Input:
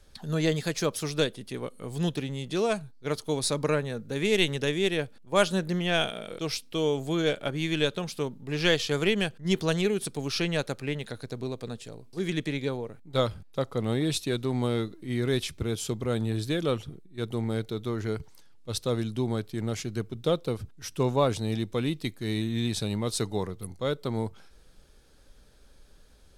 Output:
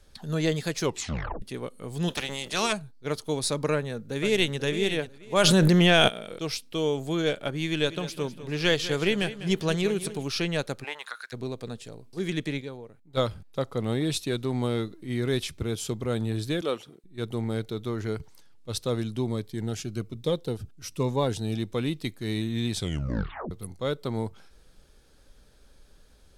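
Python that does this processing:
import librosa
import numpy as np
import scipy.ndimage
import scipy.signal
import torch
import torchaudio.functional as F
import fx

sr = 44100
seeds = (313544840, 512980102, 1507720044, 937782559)

y = fx.spec_clip(x, sr, under_db=23, at=(2.08, 2.71), fade=0.02)
y = fx.echo_throw(y, sr, start_s=3.73, length_s=0.87, ms=490, feedback_pct=25, wet_db=-10.5)
y = fx.env_flatten(y, sr, amount_pct=100, at=(5.43, 6.07), fade=0.02)
y = fx.echo_feedback(y, sr, ms=199, feedback_pct=40, wet_db=-13.5, at=(7.85, 10.22), fade=0.02)
y = fx.highpass_res(y, sr, hz=fx.line((10.83, 750.0), (11.32, 1700.0)), q=5.0, at=(10.83, 11.32), fade=0.02)
y = fx.highpass(y, sr, hz=310.0, slope=12, at=(16.61, 17.04))
y = fx.notch_cascade(y, sr, direction='falling', hz=1.2, at=(19.27, 21.58))
y = fx.edit(y, sr, fx.tape_stop(start_s=0.81, length_s=0.61),
    fx.clip_gain(start_s=12.61, length_s=0.56, db=-8.0),
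    fx.tape_stop(start_s=22.76, length_s=0.75), tone=tone)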